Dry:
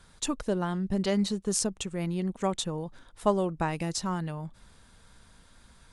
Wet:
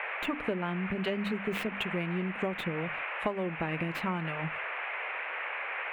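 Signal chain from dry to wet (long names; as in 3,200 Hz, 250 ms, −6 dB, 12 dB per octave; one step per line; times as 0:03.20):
stylus tracing distortion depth 0.22 ms
mains-hum notches 50/100/150/200/250/300 Hz
noise gate −47 dBFS, range −25 dB
rotating-speaker cabinet horn 5.5 Hz, later 0.9 Hz, at 0:01.65
noise in a band 470–2,300 Hz −46 dBFS
high shelf with overshoot 3,800 Hz −14 dB, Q 3
downward compressor 6 to 1, threshold −34 dBFS, peak gain reduction 13.5 dB
high-pass filter 110 Hz 6 dB per octave
level +6 dB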